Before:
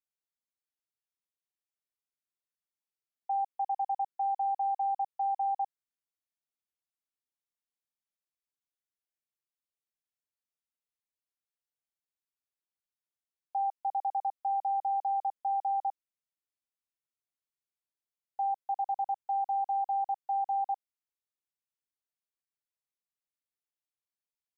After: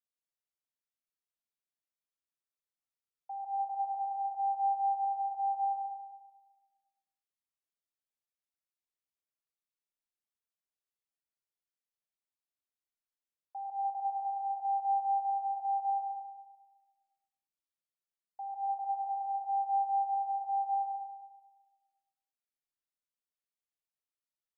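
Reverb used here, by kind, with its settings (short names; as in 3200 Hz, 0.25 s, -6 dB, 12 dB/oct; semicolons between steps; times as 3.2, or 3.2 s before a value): digital reverb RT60 1.3 s, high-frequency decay 0.8×, pre-delay 70 ms, DRR -3.5 dB; gain -10 dB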